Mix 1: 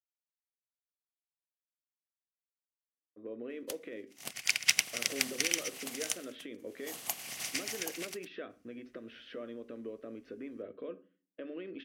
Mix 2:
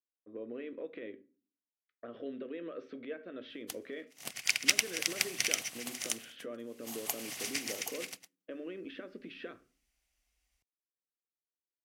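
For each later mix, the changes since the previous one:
speech: entry -2.90 s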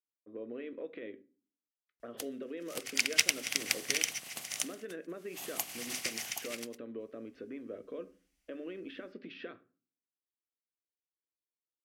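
background: entry -1.50 s

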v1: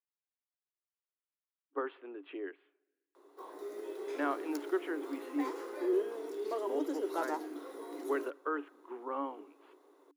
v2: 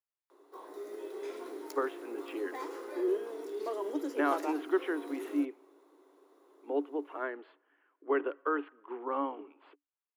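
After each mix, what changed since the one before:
speech +4.0 dB; background: entry -2.85 s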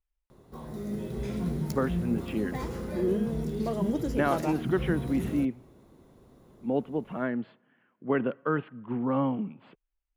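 master: remove rippled Chebyshev high-pass 280 Hz, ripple 6 dB

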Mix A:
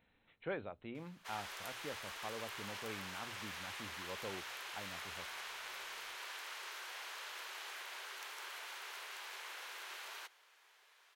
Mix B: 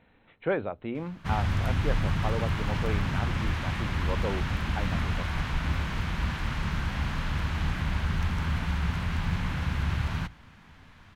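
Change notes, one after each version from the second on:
background: remove steep high-pass 370 Hz 72 dB/octave; master: remove pre-emphasis filter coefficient 0.8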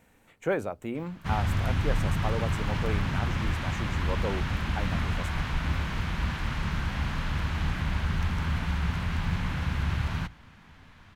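speech: remove brick-wall FIR low-pass 4.2 kHz

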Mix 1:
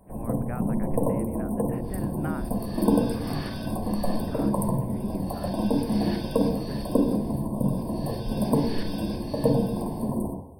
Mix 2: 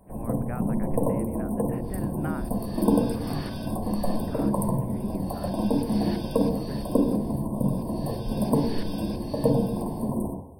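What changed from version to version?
second sound: send -10.0 dB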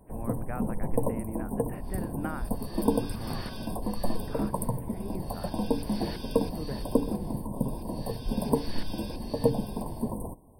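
reverb: off

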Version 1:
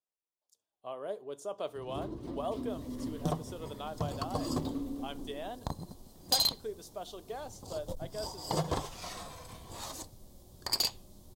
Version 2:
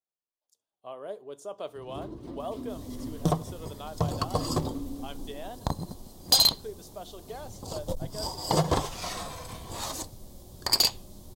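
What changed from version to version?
second sound +7.5 dB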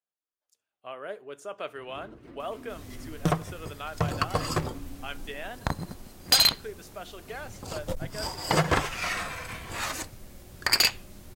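first sound -8.0 dB; master: add high-order bell 1.9 kHz +13 dB 1.3 oct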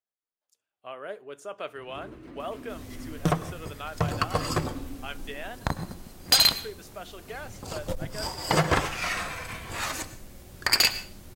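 reverb: on, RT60 0.45 s

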